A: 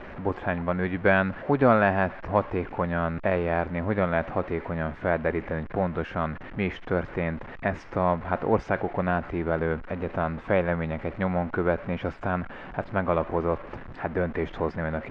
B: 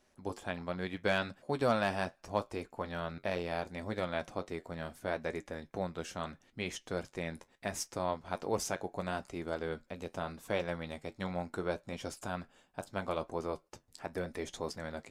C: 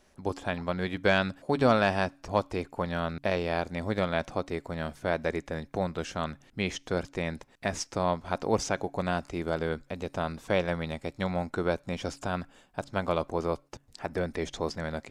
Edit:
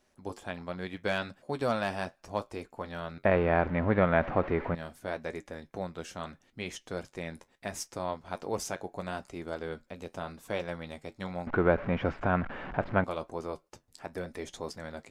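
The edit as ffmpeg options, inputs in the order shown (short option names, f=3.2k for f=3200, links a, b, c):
-filter_complex "[0:a]asplit=2[a][b];[1:a]asplit=3[c][d][e];[c]atrim=end=3.252[f];[a]atrim=start=3.248:end=4.752[g];[d]atrim=start=4.748:end=11.472[h];[b]atrim=start=11.468:end=13.042[i];[e]atrim=start=13.038[j];[f][g]acrossfade=d=0.004:c1=hsin:c2=hsin[k];[k][h]acrossfade=d=0.004:c1=hsin:c2=hsin[l];[l][i]acrossfade=d=0.004:c1=hsin:c2=hsin[m];[m][j]acrossfade=d=0.004:c1=hsin:c2=hsin"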